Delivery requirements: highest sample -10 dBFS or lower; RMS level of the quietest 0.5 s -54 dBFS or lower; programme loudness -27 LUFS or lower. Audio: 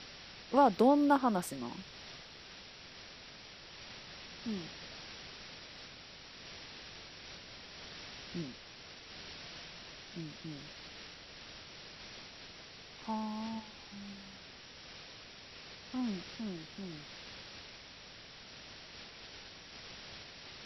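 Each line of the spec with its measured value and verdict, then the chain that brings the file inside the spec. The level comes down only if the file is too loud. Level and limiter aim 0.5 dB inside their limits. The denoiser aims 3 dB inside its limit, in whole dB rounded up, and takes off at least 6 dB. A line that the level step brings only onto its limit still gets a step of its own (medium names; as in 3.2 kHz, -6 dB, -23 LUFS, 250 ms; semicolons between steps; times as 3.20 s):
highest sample -14.0 dBFS: pass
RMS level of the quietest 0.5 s -53 dBFS: fail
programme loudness -39.0 LUFS: pass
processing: noise reduction 6 dB, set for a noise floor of -53 dBFS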